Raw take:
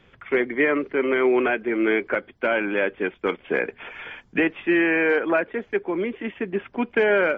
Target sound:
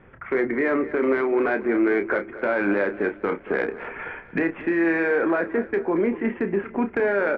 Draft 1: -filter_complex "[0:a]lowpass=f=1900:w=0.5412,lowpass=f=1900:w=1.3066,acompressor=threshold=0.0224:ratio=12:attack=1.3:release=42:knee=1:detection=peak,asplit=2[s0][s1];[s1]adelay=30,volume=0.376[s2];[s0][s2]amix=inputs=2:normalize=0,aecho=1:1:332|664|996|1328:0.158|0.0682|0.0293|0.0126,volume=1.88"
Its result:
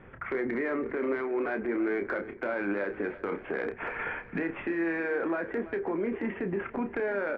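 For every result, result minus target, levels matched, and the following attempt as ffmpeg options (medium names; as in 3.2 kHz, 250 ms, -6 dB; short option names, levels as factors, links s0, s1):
echo 104 ms late; compression: peak gain reduction +8.5 dB
-filter_complex "[0:a]lowpass=f=1900:w=0.5412,lowpass=f=1900:w=1.3066,acompressor=threshold=0.0224:ratio=12:attack=1.3:release=42:knee=1:detection=peak,asplit=2[s0][s1];[s1]adelay=30,volume=0.376[s2];[s0][s2]amix=inputs=2:normalize=0,aecho=1:1:228|456|684|912:0.158|0.0682|0.0293|0.0126,volume=1.88"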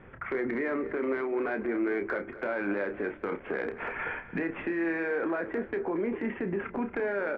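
compression: peak gain reduction +8.5 dB
-filter_complex "[0:a]lowpass=f=1900:w=0.5412,lowpass=f=1900:w=1.3066,acompressor=threshold=0.0668:ratio=12:attack=1.3:release=42:knee=1:detection=peak,asplit=2[s0][s1];[s1]adelay=30,volume=0.376[s2];[s0][s2]amix=inputs=2:normalize=0,aecho=1:1:228|456|684|912:0.158|0.0682|0.0293|0.0126,volume=1.88"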